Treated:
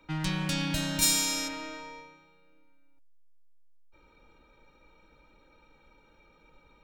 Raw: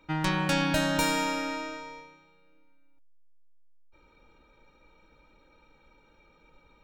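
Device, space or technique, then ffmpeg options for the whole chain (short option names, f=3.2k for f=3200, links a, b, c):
one-band saturation: -filter_complex "[0:a]acrossover=split=250|2400[a][b][c];[b]asoftclip=type=tanh:threshold=-39.5dB[d];[a][d][c]amix=inputs=3:normalize=0,asplit=3[e][f][g];[e]afade=t=out:st=1.01:d=0.02[h];[f]bass=f=250:g=-1,treble=f=4k:g=14,afade=t=in:st=1.01:d=0.02,afade=t=out:st=1.47:d=0.02[i];[g]afade=t=in:st=1.47:d=0.02[j];[h][i][j]amix=inputs=3:normalize=0"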